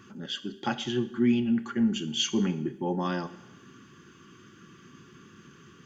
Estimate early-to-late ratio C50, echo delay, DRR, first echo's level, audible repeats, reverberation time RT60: 15.0 dB, none, 11.5 dB, none, none, 0.90 s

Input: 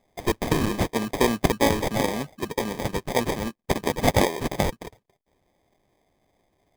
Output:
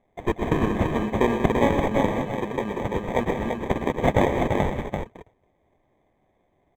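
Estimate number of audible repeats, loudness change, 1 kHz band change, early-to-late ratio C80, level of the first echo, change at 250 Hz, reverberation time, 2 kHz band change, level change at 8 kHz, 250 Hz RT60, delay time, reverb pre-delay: 3, +0.5 dB, +1.5 dB, none, -11.5 dB, +2.0 dB, none, -0.5 dB, -13.5 dB, none, 0.112 s, none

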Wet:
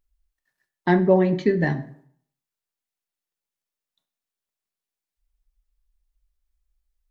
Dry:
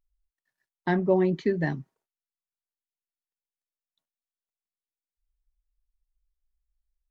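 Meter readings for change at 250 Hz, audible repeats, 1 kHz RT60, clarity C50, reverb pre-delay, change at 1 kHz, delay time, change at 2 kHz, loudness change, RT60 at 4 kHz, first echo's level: +5.5 dB, none, 0.60 s, 14.0 dB, 5 ms, +6.0 dB, none, +5.5 dB, +5.0 dB, 0.45 s, none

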